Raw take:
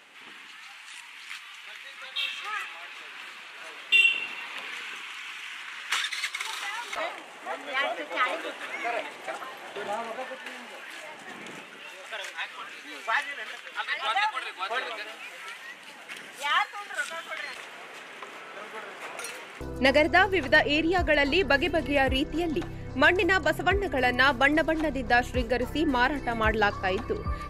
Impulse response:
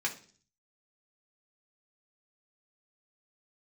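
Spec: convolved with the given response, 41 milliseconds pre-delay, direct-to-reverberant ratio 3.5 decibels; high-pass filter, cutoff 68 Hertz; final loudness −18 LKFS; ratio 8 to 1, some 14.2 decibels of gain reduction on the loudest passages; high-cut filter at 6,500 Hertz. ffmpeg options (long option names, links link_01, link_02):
-filter_complex "[0:a]highpass=68,lowpass=6500,acompressor=threshold=-31dB:ratio=8,asplit=2[link_01][link_02];[1:a]atrim=start_sample=2205,adelay=41[link_03];[link_02][link_03]afir=irnorm=-1:irlink=0,volume=-9.5dB[link_04];[link_01][link_04]amix=inputs=2:normalize=0,volume=17dB"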